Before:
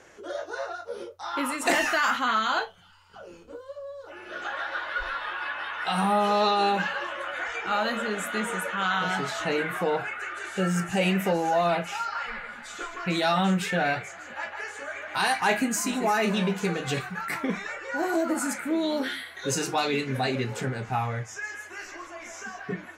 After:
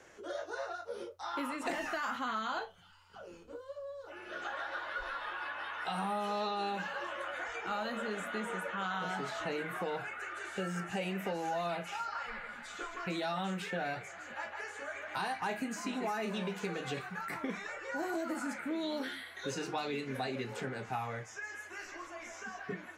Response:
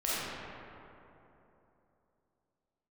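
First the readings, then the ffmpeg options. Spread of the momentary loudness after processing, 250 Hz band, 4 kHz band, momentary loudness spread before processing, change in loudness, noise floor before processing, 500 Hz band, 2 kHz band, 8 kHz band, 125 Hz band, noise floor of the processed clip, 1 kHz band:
9 LU, -10.5 dB, -11.5 dB, 15 LU, -10.5 dB, -47 dBFS, -10.0 dB, -10.0 dB, -14.5 dB, -12.5 dB, -52 dBFS, -10.0 dB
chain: -filter_complex "[0:a]acrossover=split=210|1200|4900[s0][s1][s2][s3];[s0]acompressor=threshold=0.00631:ratio=4[s4];[s1]acompressor=threshold=0.0282:ratio=4[s5];[s2]acompressor=threshold=0.0126:ratio=4[s6];[s3]acompressor=threshold=0.00251:ratio=4[s7];[s4][s5][s6][s7]amix=inputs=4:normalize=0,volume=0.562"

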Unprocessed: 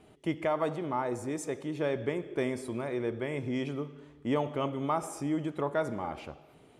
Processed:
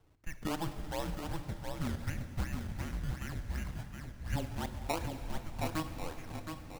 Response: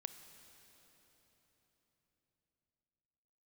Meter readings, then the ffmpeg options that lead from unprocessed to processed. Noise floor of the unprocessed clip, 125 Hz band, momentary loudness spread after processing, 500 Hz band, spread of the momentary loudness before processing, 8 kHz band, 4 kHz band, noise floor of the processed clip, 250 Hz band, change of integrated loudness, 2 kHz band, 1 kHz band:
-58 dBFS, +1.0 dB, 7 LU, -12.5 dB, 8 LU, -1.5 dB, +0.5 dB, -50 dBFS, -7.5 dB, -6.5 dB, -4.0 dB, -7.0 dB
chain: -filter_complex "[0:a]equalizer=f=710:t=o:w=0.77:g=-6.5,highpass=f=270:t=q:w=0.5412,highpass=f=270:t=q:w=1.307,lowpass=f=2600:t=q:w=0.5176,lowpass=f=2600:t=q:w=0.7071,lowpass=f=2600:t=q:w=1.932,afreqshift=-320,acrusher=samples=19:mix=1:aa=0.000001:lfo=1:lforange=19:lforate=2.7,aecho=1:1:718:0.531[s0];[1:a]atrim=start_sample=2205[s1];[s0][s1]afir=irnorm=-1:irlink=0,aeval=exprs='0.119*(cos(1*acos(clip(val(0)/0.119,-1,1)))-cos(1*PI/2))+0.00473*(cos(7*acos(clip(val(0)/0.119,-1,1)))-cos(7*PI/2))':c=same,volume=1.41"

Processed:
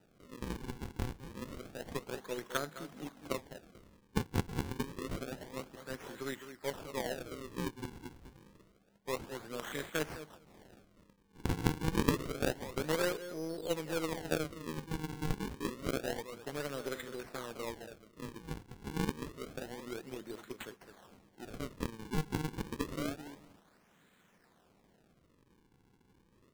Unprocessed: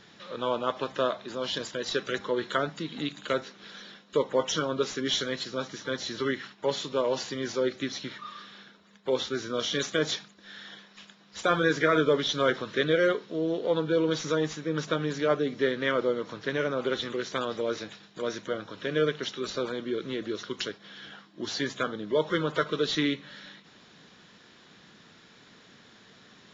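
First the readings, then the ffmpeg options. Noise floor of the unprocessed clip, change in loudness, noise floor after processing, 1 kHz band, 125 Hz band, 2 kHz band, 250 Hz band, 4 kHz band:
-56 dBFS, -10.0 dB, -69 dBFS, -10.0 dB, -2.5 dB, -11.5 dB, -7.5 dB, -14.0 dB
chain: -filter_complex "[0:a]asplit=2[s0][s1];[s1]adelay=209,lowpass=f=3500:p=1,volume=0.355,asplit=2[s2][s3];[s3]adelay=209,lowpass=f=3500:p=1,volume=0.15[s4];[s0][s2][s4]amix=inputs=3:normalize=0,acrusher=samples=40:mix=1:aa=0.000001:lfo=1:lforange=64:lforate=0.28,aeval=exprs='0.282*(cos(1*acos(clip(val(0)/0.282,-1,1)))-cos(1*PI/2))+0.0708*(cos(3*acos(clip(val(0)/0.282,-1,1)))-cos(3*PI/2))+0.00891*(cos(4*acos(clip(val(0)/0.282,-1,1)))-cos(4*PI/2))+0.00398*(cos(5*acos(clip(val(0)/0.282,-1,1)))-cos(5*PI/2))':c=same,volume=0.708"

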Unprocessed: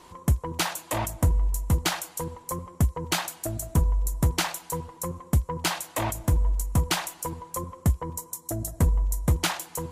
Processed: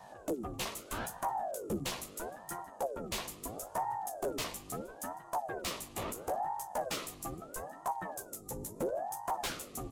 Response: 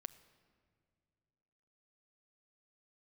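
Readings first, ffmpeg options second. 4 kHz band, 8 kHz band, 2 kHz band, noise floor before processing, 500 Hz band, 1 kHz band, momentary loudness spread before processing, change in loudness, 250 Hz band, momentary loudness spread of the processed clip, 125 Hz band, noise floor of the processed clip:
-10.5 dB, -10.0 dB, -11.0 dB, -51 dBFS, -3.0 dB, -3.0 dB, 9 LU, -11.0 dB, -11.0 dB, 7 LU, -23.5 dB, -53 dBFS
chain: -filter_complex "[0:a]superequalizer=10b=0.282:11b=0.562,aeval=exprs='val(0)+0.00891*(sin(2*PI*50*n/s)+sin(2*PI*2*50*n/s)/2+sin(2*PI*3*50*n/s)/3+sin(2*PI*4*50*n/s)/4+sin(2*PI*5*50*n/s)/5)':c=same,lowshelf=f=84:g=-2.5,bandreject=f=60:t=h:w=6,bandreject=f=120:t=h:w=6,asplit=3[s0][s1][s2];[s1]adelay=152,afreqshift=56,volume=0.0794[s3];[s2]adelay=304,afreqshift=112,volume=0.0245[s4];[s0][s3][s4]amix=inputs=3:normalize=0,aeval=exprs='0.237*(cos(1*acos(clip(val(0)/0.237,-1,1)))-cos(1*PI/2))+0.00473*(cos(2*acos(clip(val(0)/0.237,-1,1)))-cos(2*PI/2))+0.0237*(cos(4*acos(clip(val(0)/0.237,-1,1)))-cos(4*PI/2))+0.00211*(cos(8*acos(clip(val(0)/0.237,-1,1)))-cos(8*PI/2))':c=same,asplit=2[s5][s6];[s6]adelay=13,volume=0.75[s7];[s5][s7]amix=inputs=2:normalize=0,asoftclip=type=tanh:threshold=0.1,aeval=exprs='val(0)*sin(2*PI*530*n/s+530*0.65/0.75*sin(2*PI*0.75*n/s))':c=same,volume=0.447"

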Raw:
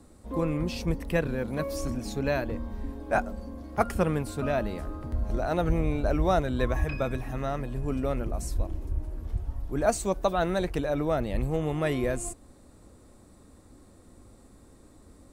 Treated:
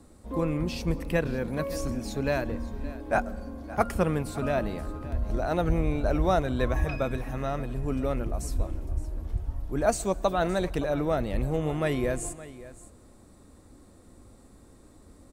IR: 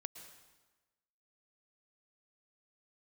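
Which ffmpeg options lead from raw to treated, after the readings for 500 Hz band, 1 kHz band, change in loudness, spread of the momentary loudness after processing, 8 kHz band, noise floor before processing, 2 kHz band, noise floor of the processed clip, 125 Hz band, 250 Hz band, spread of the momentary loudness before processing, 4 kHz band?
+0.5 dB, +0.5 dB, +0.5 dB, 9 LU, +0.5 dB, -55 dBFS, +0.5 dB, -54 dBFS, +0.5 dB, +0.5 dB, 9 LU, +0.5 dB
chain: -filter_complex "[0:a]aecho=1:1:567:0.141,asplit=2[s0][s1];[1:a]atrim=start_sample=2205[s2];[s1][s2]afir=irnorm=-1:irlink=0,volume=0.355[s3];[s0][s3]amix=inputs=2:normalize=0,volume=0.841"

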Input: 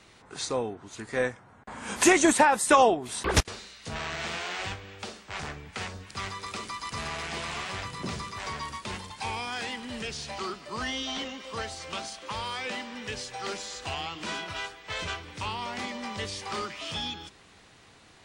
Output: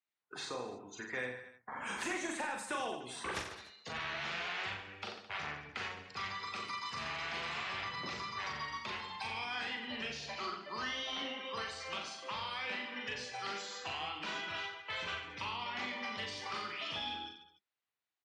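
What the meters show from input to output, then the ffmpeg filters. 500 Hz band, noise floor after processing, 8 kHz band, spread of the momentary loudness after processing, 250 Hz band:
-14.5 dB, under -85 dBFS, -16.5 dB, 5 LU, -15.5 dB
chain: -filter_complex "[0:a]agate=range=0.316:threshold=0.00398:ratio=16:detection=peak,highpass=68,afftdn=nr=31:nf=-44,tiltshelf=f=1400:g=-5,acrossover=split=290|2200[s0][s1][s2];[s0]acompressor=threshold=0.00501:ratio=4[s3];[s1]acompressor=threshold=0.00708:ratio=4[s4];[s2]acompressor=threshold=0.00708:ratio=4[s5];[s3][s4][s5]amix=inputs=3:normalize=0,asplit=2[s6][s7];[s7]highpass=f=720:p=1,volume=2.82,asoftclip=type=tanh:threshold=0.0841[s8];[s6][s8]amix=inputs=2:normalize=0,lowpass=f=2000:p=1,volume=0.501,asplit=2[s9][s10];[s10]aecho=0:1:40|88|145.6|214.7|297.7:0.631|0.398|0.251|0.158|0.1[s11];[s9][s11]amix=inputs=2:normalize=0,volume=0.794"

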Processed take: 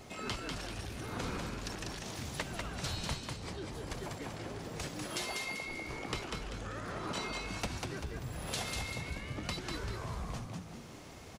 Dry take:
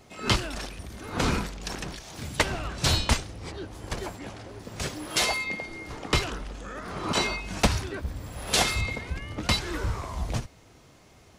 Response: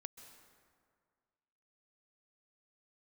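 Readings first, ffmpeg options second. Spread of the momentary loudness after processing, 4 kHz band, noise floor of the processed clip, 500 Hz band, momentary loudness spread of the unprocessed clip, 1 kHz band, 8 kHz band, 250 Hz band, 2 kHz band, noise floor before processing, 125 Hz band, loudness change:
5 LU, -12.0 dB, -50 dBFS, -9.0 dB, 14 LU, -10.0 dB, -11.0 dB, -8.5 dB, -10.0 dB, -55 dBFS, -9.5 dB, -10.5 dB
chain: -filter_complex "[0:a]acompressor=threshold=0.00562:ratio=3,asplit=6[s0][s1][s2][s3][s4][s5];[s1]adelay=195,afreqshift=57,volume=0.668[s6];[s2]adelay=390,afreqshift=114,volume=0.275[s7];[s3]adelay=585,afreqshift=171,volume=0.112[s8];[s4]adelay=780,afreqshift=228,volume=0.0462[s9];[s5]adelay=975,afreqshift=285,volume=0.0188[s10];[s0][s6][s7][s8][s9][s10]amix=inputs=6:normalize=0,volume=1.33"

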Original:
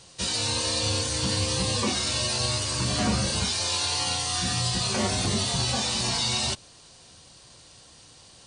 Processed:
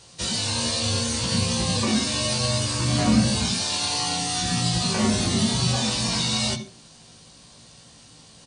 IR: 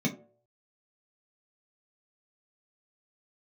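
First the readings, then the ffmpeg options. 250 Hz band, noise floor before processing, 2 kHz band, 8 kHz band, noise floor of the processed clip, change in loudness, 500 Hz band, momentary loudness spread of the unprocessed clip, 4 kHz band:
+7.5 dB, -52 dBFS, +1.5 dB, +1.5 dB, -50 dBFS, +2.5 dB, +2.0 dB, 1 LU, +1.5 dB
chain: -filter_complex "[0:a]asplit=2[s0][s1];[s1]adelay=18,volume=0.562[s2];[s0][s2]amix=inputs=2:normalize=0,asplit=2[s3][s4];[1:a]atrim=start_sample=2205,adelay=75[s5];[s4][s5]afir=irnorm=-1:irlink=0,volume=0.141[s6];[s3][s6]amix=inputs=2:normalize=0"

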